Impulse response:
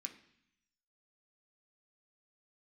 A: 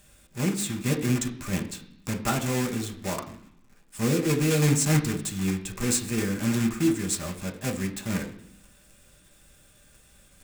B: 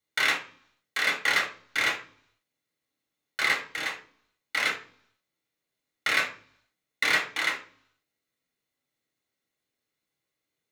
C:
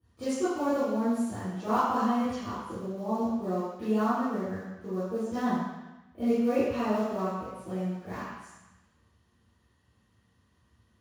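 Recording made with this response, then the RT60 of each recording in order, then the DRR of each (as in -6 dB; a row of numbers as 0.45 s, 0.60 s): A; 0.70 s, 0.50 s, 1.0 s; 2.5 dB, -1.0 dB, -16.0 dB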